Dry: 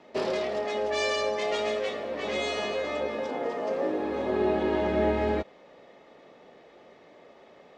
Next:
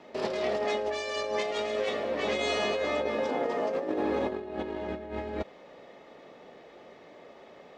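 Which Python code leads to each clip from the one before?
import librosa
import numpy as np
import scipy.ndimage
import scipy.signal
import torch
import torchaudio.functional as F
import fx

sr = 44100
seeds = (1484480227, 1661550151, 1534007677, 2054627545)

y = fx.over_compress(x, sr, threshold_db=-30.0, ratio=-0.5)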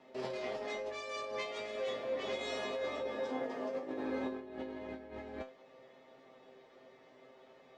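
y = fx.comb_fb(x, sr, f0_hz=130.0, decay_s=0.23, harmonics='all', damping=0.0, mix_pct=90)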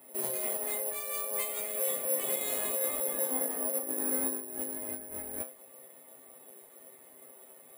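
y = (np.kron(scipy.signal.resample_poly(x, 1, 4), np.eye(4)[0]) * 4)[:len(x)]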